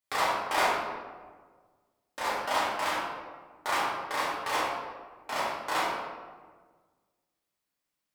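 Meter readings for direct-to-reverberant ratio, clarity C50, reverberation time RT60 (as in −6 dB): −9.0 dB, −0.5 dB, 1.5 s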